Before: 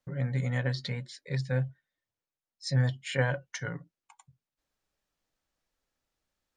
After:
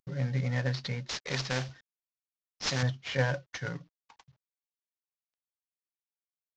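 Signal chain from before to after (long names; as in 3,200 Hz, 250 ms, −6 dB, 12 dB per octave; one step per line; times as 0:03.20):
variable-slope delta modulation 32 kbit/s
0:01.09–0:02.83: every bin compressed towards the loudest bin 2 to 1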